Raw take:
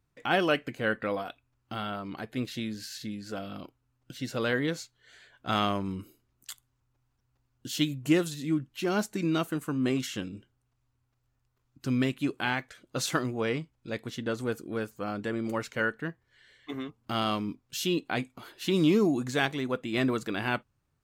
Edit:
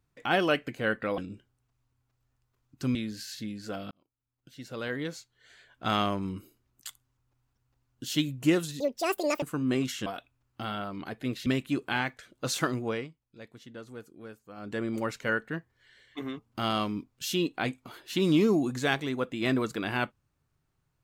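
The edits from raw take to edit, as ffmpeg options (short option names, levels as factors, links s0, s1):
-filter_complex "[0:a]asplit=10[s0][s1][s2][s3][s4][s5][s6][s7][s8][s9];[s0]atrim=end=1.182[s10];[s1]atrim=start=10.208:end=11.982[s11];[s2]atrim=start=2.578:end=3.54,asetpts=PTS-STARTPTS,afade=t=out:st=0.958:d=0.004:c=hsin[s12];[s3]atrim=start=3.54:end=8.434,asetpts=PTS-STARTPTS,afade=t=in:d=1.95[s13];[s4]atrim=start=8.43:end=9.57,asetpts=PTS-STARTPTS,asetrate=80703,aresample=44100,atrim=end_sample=27472,asetpts=PTS-STARTPTS[s14];[s5]atrim=start=9.566:end=10.212[s15];[s6]atrim=start=1.178:end=2.582[s16];[s7]atrim=start=11.978:end=13.6,asetpts=PTS-STARTPTS,afade=t=out:st=1.402:d=0.22:silence=0.237137[s17];[s8]atrim=start=13.6:end=15.08,asetpts=PTS-STARTPTS,volume=0.237[s18];[s9]atrim=start=15.08,asetpts=PTS-STARTPTS,afade=t=in:d=0.22:silence=0.237137[s19];[s10][s11]acrossfade=d=0.004:c1=hsin:c2=hsin[s20];[s12][s13]concat=n=2:v=0:a=1[s21];[s20][s21]acrossfade=d=0.004:c1=hsin:c2=hsin[s22];[s22][s14]acrossfade=d=0.004:c1=hsin:c2=hsin[s23];[s23][s15]acrossfade=d=0.004:c1=hsin:c2=hsin[s24];[s24][s16]acrossfade=d=0.004:c1=hsin:c2=hsin[s25];[s17][s18][s19]concat=n=3:v=0:a=1[s26];[s25][s26]acrossfade=d=0.004:c1=hsin:c2=hsin"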